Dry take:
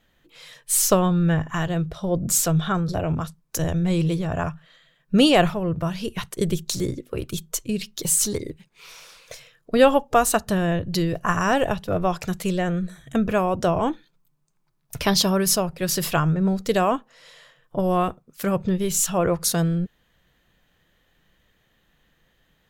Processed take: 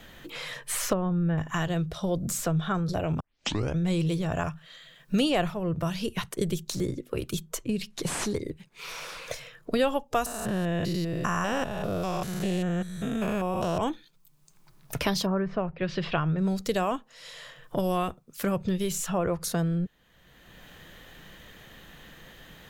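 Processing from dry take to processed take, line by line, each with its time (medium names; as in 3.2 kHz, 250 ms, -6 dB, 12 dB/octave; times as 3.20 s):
0.93–1.38 s: tape spacing loss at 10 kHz 38 dB
3.20 s: tape start 0.57 s
7.90–8.32 s: CVSD coder 64 kbps
10.26–13.78 s: spectrogram pixelated in time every 200 ms
15.25–16.37 s: low-pass 1.7 kHz -> 4.5 kHz 24 dB/octave
whole clip: three bands compressed up and down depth 70%; trim -5 dB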